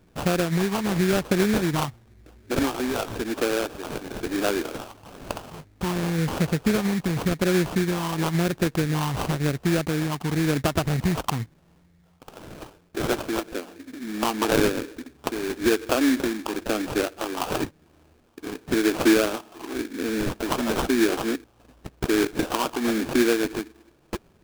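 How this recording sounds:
phaser sweep stages 8, 0.96 Hz, lowest notch 530–1,400 Hz
aliases and images of a low sample rate 2,000 Hz, jitter 20%

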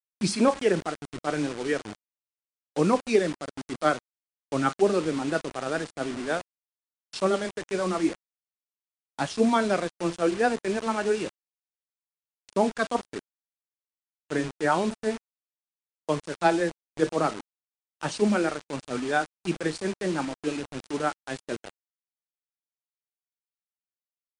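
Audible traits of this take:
a quantiser's noise floor 6 bits, dither none
MP3

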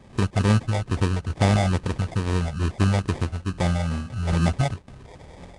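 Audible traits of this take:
phaser sweep stages 6, 2.3 Hz, lowest notch 310–3,300 Hz
aliases and images of a low sample rate 1,400 Hz, jitter 0%
Nellymoser

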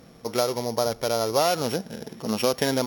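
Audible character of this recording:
a buzz of ramps at a fixed pitch in blocks of 8 samples
Opus

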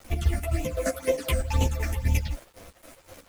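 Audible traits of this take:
phaser sweep stages 8, 2 Hz, lowest notch 120–1,500 Hz
a quantiser's noise floor 8 bits, dither none
chopped level 3.9 Hz, depth 60%, duty 50%
a shimmering, thickened sound

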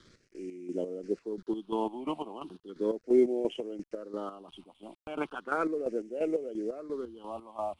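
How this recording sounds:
a quantiser's noise floor 10 bits, dither none
phaser sweep stages 6, 0.36 Hz, lowest notch 440–1,100 Hz
chopped level 2.9 Hz, depth 65%, duty 45%
IMA ADPCM

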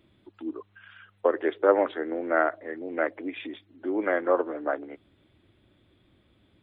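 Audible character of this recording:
background noise floor −66 dBFS
spectral slope +2.0 dB per octave

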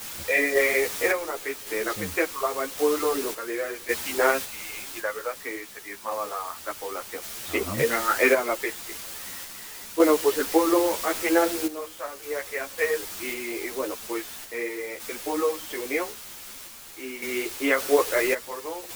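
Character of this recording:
a quantiser's noise floor 6 bits, dither triangular
sample-and-hold tremolo 1.8 Hz, depth 75%
a shimmering, thickened sound

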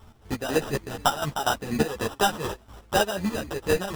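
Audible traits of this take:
chopped level 4.1 Hz, depth 65%, duty 45%
aliases and images of a low sample rate 2,200 Hz, jitter 0%
a shimmering, thickened sound

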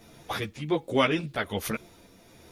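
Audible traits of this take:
tremolo triangle 1.3 Hz, depth 40%
a quantiser's noise floor 12 bits, dither none
a shimmering, thickened sound

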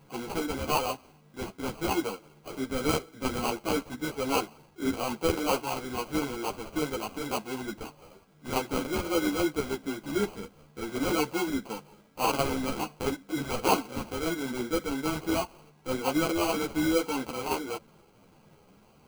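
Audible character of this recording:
aliases and images of a low sample rate 1,800 Hz, jitter 0%
a shimmering, thickened sound

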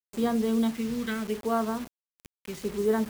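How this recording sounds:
phaser sweep stages 2, 0.76 Hz, lowest notch 670–2,500 Hz
a quantiser's noise floor 8 bits, dither none

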